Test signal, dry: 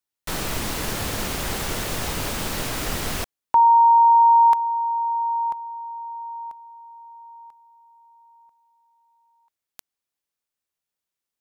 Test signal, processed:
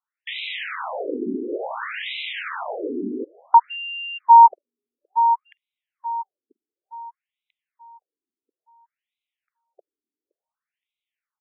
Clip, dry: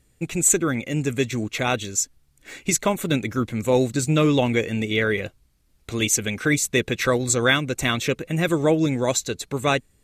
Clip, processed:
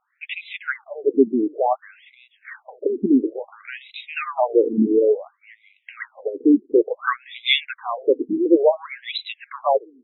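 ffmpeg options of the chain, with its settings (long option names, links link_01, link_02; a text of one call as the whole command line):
ffmpeg -i in.wav -filter_complex "[0:a]lowshelf=frequency=390:gain=7,acontrast=75,asplit=2[link_01][link_02];[link_02]adelay=519,lowpass=frequency=2000:poles=1,volume=-23.5dB,asplit=2[link_03][link_04];[link_04]adelay=519,lowpass=frequency=2000:poles=1,volume=0.25[link_05];[link_01][link_03][link_05]amix=inputs=3:normalize=0,afftfilt=real='re*between(b*sr/1024,300*pow(2900/300,0.5+0.5*sin(2*PI*0.57*pts/sr))/1.41,300*pow(2900/300,0.5+0.5*sin(2*PI*0.57*pts/sr))*1.41)':imag='im*between(b*sr/1024,300*pow(2900/300,0.5+0.5*sin(2*PI*0.57*pts/sr))/1.41,300*pow(2900/300,0.5+0.5*sin(2*PI*0.57*pts/sr))*1.41)':win_size=1024:overlap=0.75" out.wav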